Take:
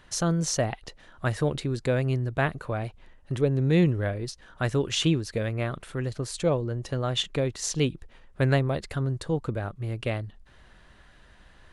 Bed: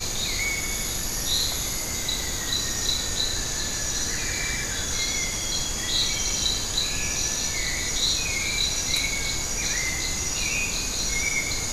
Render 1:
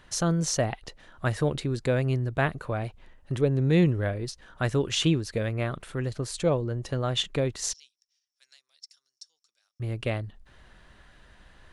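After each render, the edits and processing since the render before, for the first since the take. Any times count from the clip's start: 7.73–9.80 s: ladder band-pass 5.6 kHz, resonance 90%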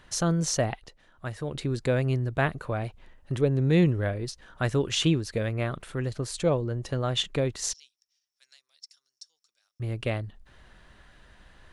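0.73–1.64 s: dip -8 dB, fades 0.17 s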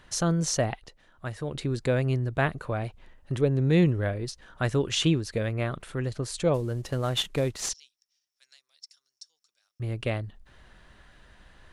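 6.54–7.69 s: CVSD coder 64 kbps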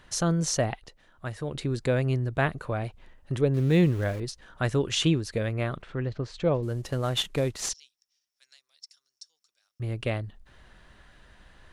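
3.54–4.20 s: small samples zeroed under -39 dBFS; 5.82–6.63 s: distance through air 190 m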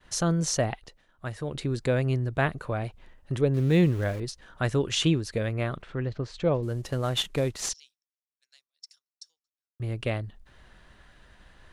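expander -53 dBFS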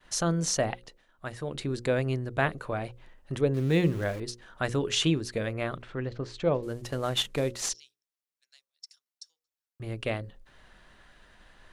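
peaking EQ 73 Hz -6.5 dB 2 oct; hum notches 60/120/180/240/300/360/420/480/540 Hz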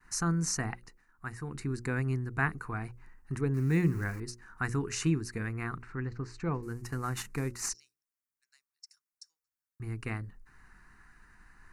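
static phaser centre 1.4 kHz, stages 4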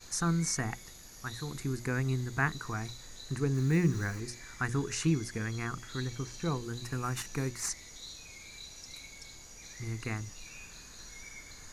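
add bed -23 dB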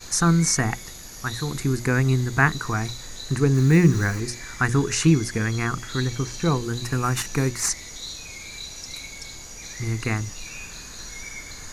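trim +11 dB

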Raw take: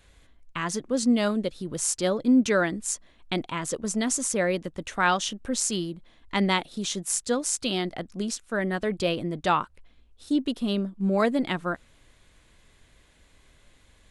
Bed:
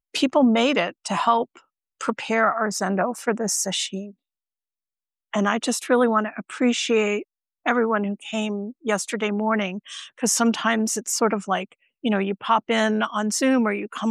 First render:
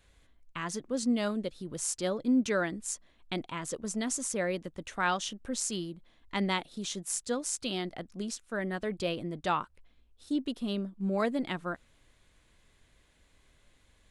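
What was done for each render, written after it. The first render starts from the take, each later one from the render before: trim -6.5 dB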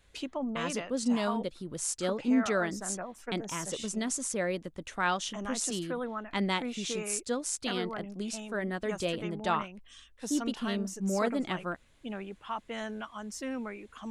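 add bed -17 dB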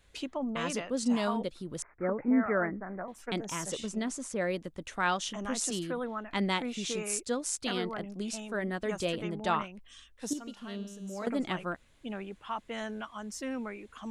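1.82–3.08 s: steep low-pass 2.2 kHz 96 dB/octave; 3.79–4.40 s: treble shelf 5.5 kHz -> 3.4 kHz -10 dB; 10.33–11.27 s: feedback comb 200 Hz, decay 1.7 s, mix 70%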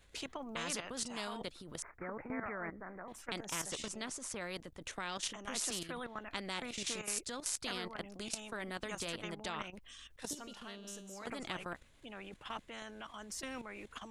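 level held to a coarse grid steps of 12 dB; spectrum-flattening compressor 2:1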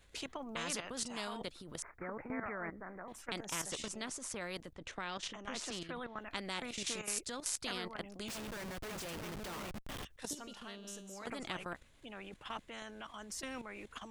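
4.73–6.19 s: distance through air 89 m; 8.28–10.05 s: Schmitt trigger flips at -50.5 dBFS

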